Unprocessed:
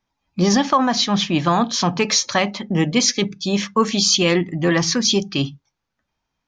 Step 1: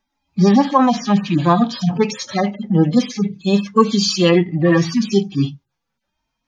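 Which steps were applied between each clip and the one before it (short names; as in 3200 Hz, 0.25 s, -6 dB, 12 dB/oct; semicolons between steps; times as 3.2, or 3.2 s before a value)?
median-filter separation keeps harmonic; gain +5 dB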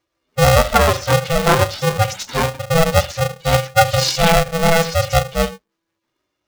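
polarity switched at an audio rate 330 Hz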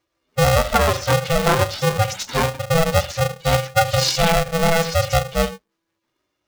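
compressor 2.5:1, threshold -14 dBFS, peak gain reduction 5.5 dB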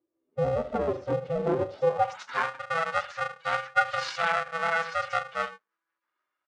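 downsampling 22050 Hz; band-pass sweep 340 Hz -> 1400 Hz, 1.64–2.28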